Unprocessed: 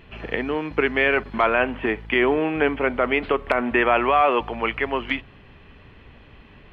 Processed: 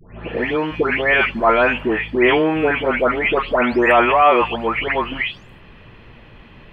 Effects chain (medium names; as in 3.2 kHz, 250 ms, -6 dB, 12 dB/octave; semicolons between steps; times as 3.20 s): delay that grows with frequency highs late, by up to 392 ms; trim +6 dB